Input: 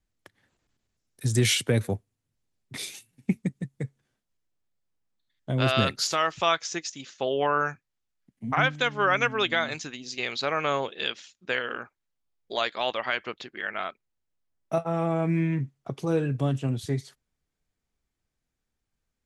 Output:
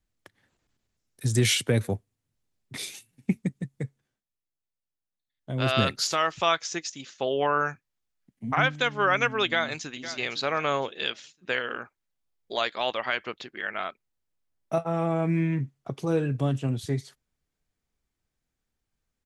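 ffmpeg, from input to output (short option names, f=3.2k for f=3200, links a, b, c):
-filter_complex "[0:a]asplit=2[a][b];[b]afade=t=in:st=9.45:d=0.01,afade=t=out:st=10.07:d=0.01,aecho=0:1:510|1020|1530:0.211349|0.0634047|0.0190214[c];[a][c]amix=inputs=2:normalize=0,asplit=3[d][e][f];[d]atrim=end=4.27,asetpts=PTS-STARTPTS,afade=t=out:st=3.82:d=0.45:silence=0.266073[g];[e]atrim=start=4.27:end=5.32,asetpts=PTS-STARTPTS,volume=-11.5dB[h];[f]atrim=start=5.32,asetpts=PTS-STARTPTS,afade=t=in:d=0.45:silence=0.266073[i];[g][h][i]concat=n=3:v=0:a=1"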